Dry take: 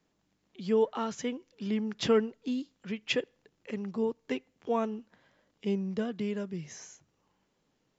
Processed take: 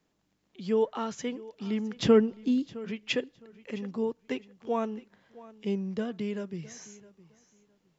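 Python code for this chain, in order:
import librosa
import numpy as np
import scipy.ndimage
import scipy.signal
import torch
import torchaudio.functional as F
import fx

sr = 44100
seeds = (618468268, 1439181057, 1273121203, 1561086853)

y = fx.low_shelf(x, sr, hz=400.0, db=9.0, at=(1.96, 2.75))
y = fx.echo_feedback(y, sr, ms=662, feedback_pct=21, wet_db=-19.5)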